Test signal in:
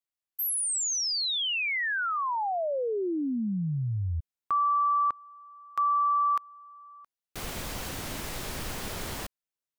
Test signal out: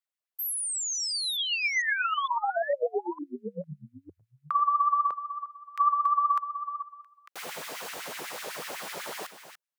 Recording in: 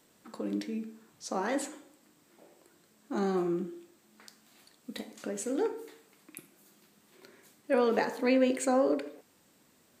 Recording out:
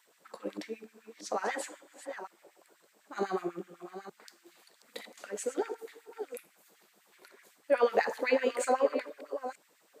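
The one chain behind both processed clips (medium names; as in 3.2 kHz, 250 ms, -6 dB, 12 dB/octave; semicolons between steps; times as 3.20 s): chunks repeated in reverse 455 ms, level -10.5 dB; peaking EQ 160 Hz +14 dB 0.79 oct; LFO high-pass sine 8 Hz 430–2100 Hz; trim -2.5 dB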